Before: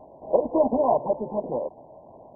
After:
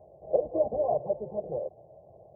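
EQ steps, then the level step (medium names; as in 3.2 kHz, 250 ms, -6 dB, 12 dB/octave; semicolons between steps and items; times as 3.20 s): high-pass 70 Hz; bass shelf 300 Hz +10.5 dB; static phaser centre 960 Hz, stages 6; -6.5 dB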